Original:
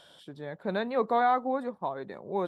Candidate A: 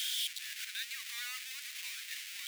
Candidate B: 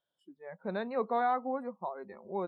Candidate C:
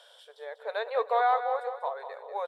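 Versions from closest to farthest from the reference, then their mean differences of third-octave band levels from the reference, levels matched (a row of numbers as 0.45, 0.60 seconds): B, C, A; 4.5, 7.5, 27.0 decibels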